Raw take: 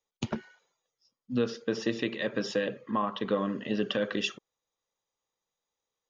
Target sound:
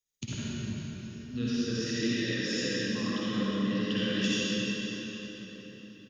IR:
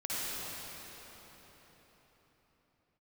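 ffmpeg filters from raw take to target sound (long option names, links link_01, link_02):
-filter_complex "[0:a]firequalizer=gain_entry='entry(140,0);entry(740,-21);entry(1700,-4);entry(6200,4)':delay=0.05:min_phase=1[link_01];[1:a]atrim=start_sample=2205[link_02];[link_01][link_02]afir=irnorm=-1:irlink=0"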